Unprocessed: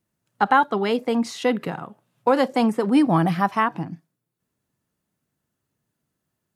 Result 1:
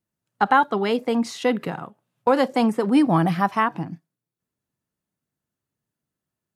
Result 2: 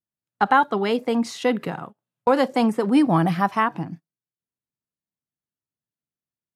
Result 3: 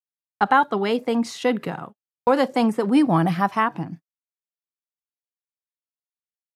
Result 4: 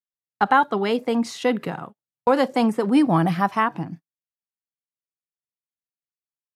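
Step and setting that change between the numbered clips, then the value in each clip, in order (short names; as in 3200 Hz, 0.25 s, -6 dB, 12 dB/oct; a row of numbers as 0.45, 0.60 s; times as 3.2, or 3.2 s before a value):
gate, range: -7, -20, -49, -36 dB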